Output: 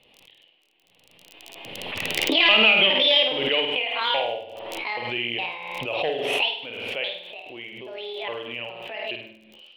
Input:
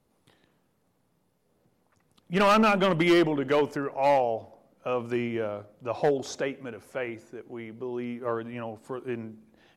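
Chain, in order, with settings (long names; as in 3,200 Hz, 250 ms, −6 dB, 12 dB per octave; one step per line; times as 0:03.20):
pitch shifter gated in a rhythm +9 semitones, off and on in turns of 414 ms
in parallel at −8.5 dB: floating-point word with a short mantissa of 2 bits
on the sum: drawn EQ curve 230 Hz 0 dB, 520 Hz +11 dB, 3,100 Hz +9 dB, 6,300 Hz −23 dB
on a send: flutter between parallel walls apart 8.7 metres, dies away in 0.57 s
on the sum: surface crackle 34 per second −44 dBFS
high shelf with overshoot 2,000 Hz +12.5 dB, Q 3
background raised ahead of every attack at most 30 dB per second
level −15 dB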